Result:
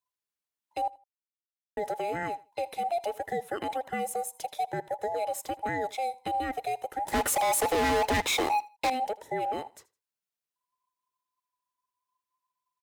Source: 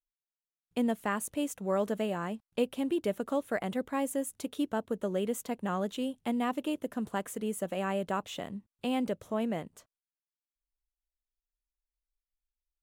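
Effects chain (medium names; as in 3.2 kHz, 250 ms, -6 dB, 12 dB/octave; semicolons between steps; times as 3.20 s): every band turned upside down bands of 1 kHz; high-pass 52 Hz; 7.08–8.90 s: waveshaping leveller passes 5; peak limiter -25 dBFS, peak gain reduction 7.5 dB; 0.88–1.77 s: mute; feedback delay 80 ms, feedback 23%, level -21.5 dB; trim +2.5 dB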